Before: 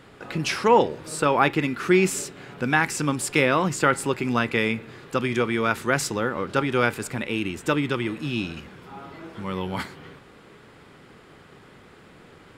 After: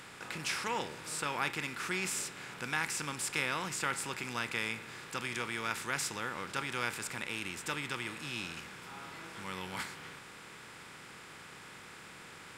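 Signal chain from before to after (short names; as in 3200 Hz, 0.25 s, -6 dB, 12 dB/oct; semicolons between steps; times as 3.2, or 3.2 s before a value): per-bin compression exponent 0.6; passive tone stack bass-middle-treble 5-5-5; gain -3.5 dB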